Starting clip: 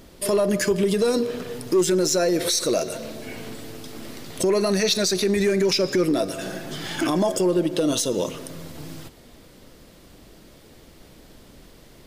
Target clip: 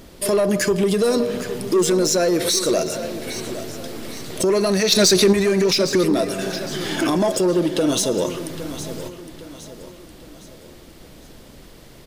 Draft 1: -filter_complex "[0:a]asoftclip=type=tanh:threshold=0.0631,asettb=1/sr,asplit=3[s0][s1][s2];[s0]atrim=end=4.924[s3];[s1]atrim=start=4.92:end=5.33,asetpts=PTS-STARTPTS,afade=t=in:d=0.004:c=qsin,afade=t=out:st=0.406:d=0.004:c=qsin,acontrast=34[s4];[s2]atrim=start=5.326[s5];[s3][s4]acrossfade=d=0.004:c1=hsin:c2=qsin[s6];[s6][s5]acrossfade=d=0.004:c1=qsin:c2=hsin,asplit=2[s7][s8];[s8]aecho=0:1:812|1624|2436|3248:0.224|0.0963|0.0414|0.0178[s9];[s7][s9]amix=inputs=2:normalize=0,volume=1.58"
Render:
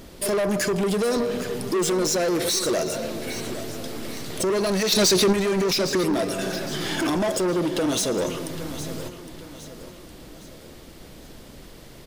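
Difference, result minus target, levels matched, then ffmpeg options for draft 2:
saturation: distortion +11 dB
-filter_complex "[0:a]asoftclip=type=tanh:threshold=0.178,asettb=1/sr,asplit=3[s0][s1][s2];[s0]atrim=end=4.924[s3];[s1]atrim=start=4.92:end=5.33,asetpts=PTS-STARTPTS,afade=t=in:d=0.004:c=qsin,afade=t=out:st=0.406:d=0.004:c=qsin,acontrast=34[s4];[s2]atrim=start=5.326[s5];[s3][s4]acrossfade=d=0.004:c1=hsin:c2=qsin[s6];[s6][s5]acrossfade=d=0.004:c1=qsin:c2=hsin,asplit=2[s7][s8];[s8]aecho=0:1:812|1624|2436|3248:0.224|0.0963|0.0414|0.0178[s9];[s7][s9]amix=inputs=2:normalize=0,volume=1.58"

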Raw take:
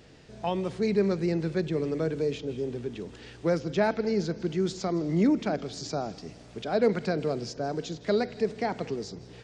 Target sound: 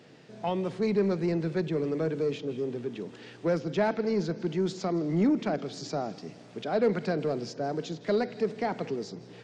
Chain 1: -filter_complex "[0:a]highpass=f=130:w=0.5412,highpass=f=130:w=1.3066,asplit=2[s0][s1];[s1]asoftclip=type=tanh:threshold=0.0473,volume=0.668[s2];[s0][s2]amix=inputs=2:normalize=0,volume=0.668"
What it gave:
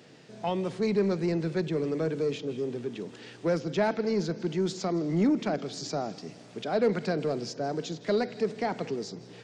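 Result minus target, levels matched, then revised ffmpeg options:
8 kHz band +4.5 dB
-filter_complex "[0:a]highpass=f=130:w=0.5412,highpass=f=130:w=1.3066,highshelf=f=5200:g=-7.5,asplit=2[s0][s1];[s1]asoftclip=type=tanh:threshold=0.0473,volume=0.668[s2];[s0][s2]amix=inputs=2:normalize=0,volume=0.668"

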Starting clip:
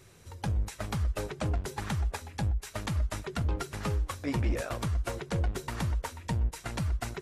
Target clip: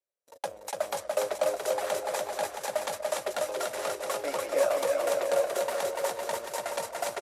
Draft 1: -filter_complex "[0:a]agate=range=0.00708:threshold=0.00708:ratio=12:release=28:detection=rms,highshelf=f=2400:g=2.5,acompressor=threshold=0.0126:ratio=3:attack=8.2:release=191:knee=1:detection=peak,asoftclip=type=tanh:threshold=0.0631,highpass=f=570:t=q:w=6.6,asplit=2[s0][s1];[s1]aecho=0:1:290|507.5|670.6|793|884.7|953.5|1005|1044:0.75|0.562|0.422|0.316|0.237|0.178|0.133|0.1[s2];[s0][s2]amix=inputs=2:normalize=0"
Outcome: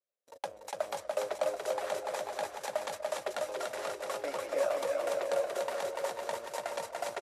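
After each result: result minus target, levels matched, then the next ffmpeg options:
compression: peak gain reduction +6 dB; 8 kHz band -3.0 dB
-filter_complex "[0:a]agate=range=0.00708:threshold=0.00708:ratio=12:release=28:detection=rms,highshelf=f=2400:g=2.5,acompressor=threshold=0.0355:ratio=3:attack=8.2:release=191:knee=1:detection=peak,asoftclip=type=tanh:threshold=0.0631,highpass=f=570:t=q:w=6.6,asplit=2[s0][s1];[s1]aecho=0:1:290|507.5|670.6|793|884.7|953.5|1005|1044:0.75|0.562|0.422|0.316|0.237|0.178|0.133|0.1[s2];[s0][s2]amix=inputs=2:normalize=0"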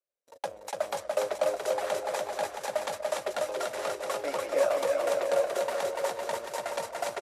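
8 kHz band -3.5 dB
-filter_complex "[0:a]agate=range=0.00708:threshold=0.00708:ratio=12:release=28:detection=rms,highshelf=f=2400:g=2.5,acompressor=threshold=0.0355:ratio=3:attack=8.2:release=191:knee=1:detection=peak,asoftclip=type=tanh:threshold=0.0631,highpass=f=570:t=q:w=6.6,highshelf=f=8300:g=8,asplit=2[s0][s1];[s1]aecho=0:1:290|507.5|670.6|793|884.7|953.5|1005|1044:0.75|0.562|0.422|0.316|0.237|0.178|0.133|0.1[s2];[s0][s2]amix=inputs=2:normalize=0"

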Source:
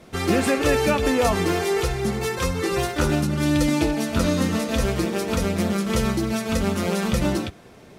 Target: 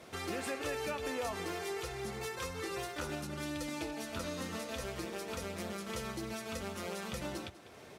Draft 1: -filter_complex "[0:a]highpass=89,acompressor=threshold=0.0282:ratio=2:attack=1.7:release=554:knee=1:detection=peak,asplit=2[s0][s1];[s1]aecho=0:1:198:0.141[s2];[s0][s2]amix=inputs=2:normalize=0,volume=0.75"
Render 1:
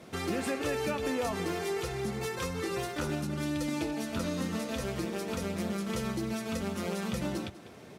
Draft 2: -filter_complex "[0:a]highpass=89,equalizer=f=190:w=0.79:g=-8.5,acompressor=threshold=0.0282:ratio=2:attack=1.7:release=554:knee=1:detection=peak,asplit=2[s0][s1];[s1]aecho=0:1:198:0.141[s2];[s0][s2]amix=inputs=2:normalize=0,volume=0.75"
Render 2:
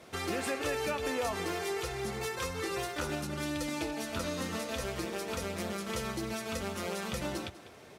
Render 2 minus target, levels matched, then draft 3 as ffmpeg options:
compression: peak gain reduction -4 dB
-filter_complex "[0:a]highpass=89,equalizer=f=190:w=0.79:g=-8.5,acompressor=threshold=0.0106:ratio=2:attack=1.7:release=554:knee=1:detection=peak,asplit=2[s0][s1];[s1]aecho=0:1:198:0.141[s2];[s0][s2]amix=inputs=2:normalize=0,volume=0.75"

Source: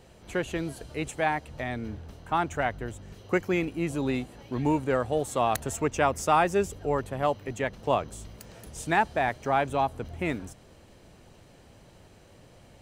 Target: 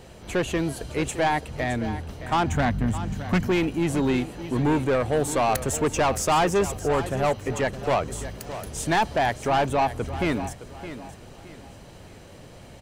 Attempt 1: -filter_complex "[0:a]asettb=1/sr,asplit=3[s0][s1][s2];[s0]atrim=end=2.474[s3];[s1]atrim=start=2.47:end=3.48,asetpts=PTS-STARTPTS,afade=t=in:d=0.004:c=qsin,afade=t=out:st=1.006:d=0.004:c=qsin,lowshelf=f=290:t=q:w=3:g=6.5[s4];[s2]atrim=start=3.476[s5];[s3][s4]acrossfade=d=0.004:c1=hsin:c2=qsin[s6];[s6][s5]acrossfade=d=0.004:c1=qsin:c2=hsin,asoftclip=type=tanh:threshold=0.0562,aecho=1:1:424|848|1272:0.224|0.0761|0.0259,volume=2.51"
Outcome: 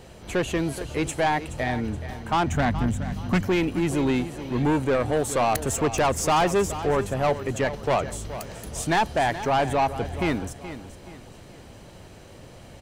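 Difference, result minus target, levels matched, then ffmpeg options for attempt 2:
echo 192 ms early
-filter_complex "[0:a]asettb=1/sr,asplit=3[s0][s1][s2];[s0]atrim=end=2.474[s3];[s1]atrim=start=2.47:end=3.48,asetpts=PTS-STARTPTS,afade=t=in:d=0.004:c=qsin,afade=t=out:st=1.006:d=0.004:c=qsin,lowshelf=f=290:t=q:w=3:g=6.5[s4];[s2]atrim=start=3.476[s5];[s3][s4]acrossfade=d=0.004:c1=hsin:c2=qsin[s6];[s6][s5]acrossfade=d=0.004:c1=qsin:c2=hsin,asoftclip=type=tanh:threshold=0.0562,aecho=1:1:616|1232|1848:0.224|0.0761|0.0259,volume=2.51"

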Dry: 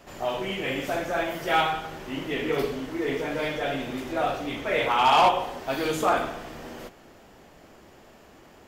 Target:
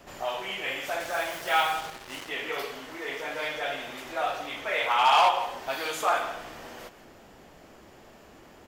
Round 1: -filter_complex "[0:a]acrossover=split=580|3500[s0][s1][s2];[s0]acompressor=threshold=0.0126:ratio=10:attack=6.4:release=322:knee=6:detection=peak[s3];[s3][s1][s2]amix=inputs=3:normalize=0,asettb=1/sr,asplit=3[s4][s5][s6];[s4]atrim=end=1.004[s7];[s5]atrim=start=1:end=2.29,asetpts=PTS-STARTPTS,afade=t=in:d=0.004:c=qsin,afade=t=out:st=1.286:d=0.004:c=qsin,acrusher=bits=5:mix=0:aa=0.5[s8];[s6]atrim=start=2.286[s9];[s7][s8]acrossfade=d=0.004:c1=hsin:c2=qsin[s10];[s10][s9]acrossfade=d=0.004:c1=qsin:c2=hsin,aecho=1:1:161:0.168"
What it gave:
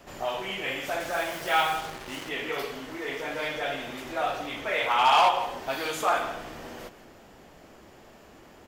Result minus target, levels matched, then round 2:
compression: peak gain reduction -7 dB
-filter_complex "[0:a]acrossover=split=580|3500[s0][s1][s2];[s0]acompressor=threshold=0.00531:ratio=10:attack=6.4:release=322:knee=6:detection=peak[s3];[s3][s1][s2]amix=inputs=3:normalize=0,asettb=1/sr,asplit=3[s4][s5][s6];[s4]atrim=end=1.004[s7];[s5]atrim=start=1:end=2.29,asetpts=PTS-STARTPTS,afade=t=in:d=0.004:c=qsin,afade=t=out:st=1.286:d=0.004:c=qsin,acrusher=bits=5:mix=0:aa=0.5[s8];[s6]atrim=start=2.286[s9];[s7][s8]acrossfade=d=0.004:c1=hsin:c2=qsin[s10];[s10][s9]acrossfade=d=0.004:c1=qsin:c2=hsin,aecho=1:1:161:0.168"

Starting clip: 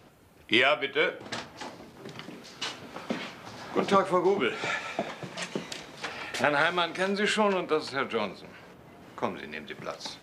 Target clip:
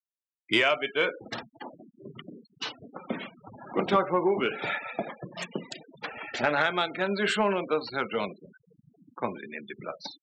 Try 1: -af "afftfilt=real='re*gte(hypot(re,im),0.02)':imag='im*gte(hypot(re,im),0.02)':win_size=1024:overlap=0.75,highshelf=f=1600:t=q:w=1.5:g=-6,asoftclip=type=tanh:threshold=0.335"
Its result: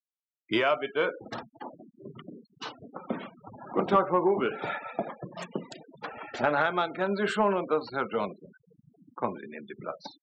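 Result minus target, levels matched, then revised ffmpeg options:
4 kHz band -6.5 dB
-af "afftfilt=real='re*gte(hypot(re,im),0.02)':imag='im*gte(hypot(re,im),0.02)':win_size=1024:overlap=0.75,asoftclip=type=tanh:threshold=0.335"

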